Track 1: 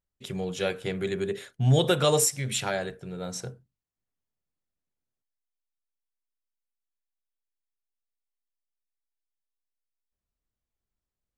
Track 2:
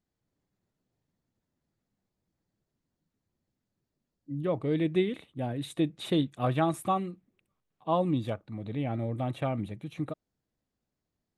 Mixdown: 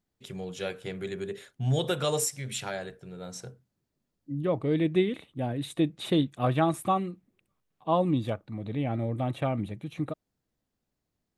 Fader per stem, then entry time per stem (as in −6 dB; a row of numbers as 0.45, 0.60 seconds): −5.5, +2.0 decibels; 0.00, 0.00 seconds